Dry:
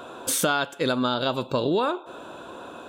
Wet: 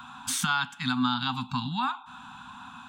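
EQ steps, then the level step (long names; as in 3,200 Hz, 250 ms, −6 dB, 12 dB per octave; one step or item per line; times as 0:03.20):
Chebyshev band-stop filter 260–770 Hz, order 5
parametric band 620 Hz −4 dB 0.58 octaves
parametric band 13,000 Hz −11.5 dB 0.88 octaves
0.0 dB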